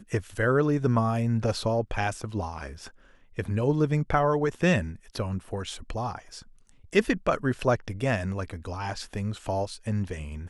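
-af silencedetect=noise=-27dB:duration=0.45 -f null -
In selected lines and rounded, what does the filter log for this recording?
silence_start: 2.67
silence_end: 3.39 | silence_duration: 0.72
silence_start: 6.15
silence_end: 6.93 | silence_duration: 0.78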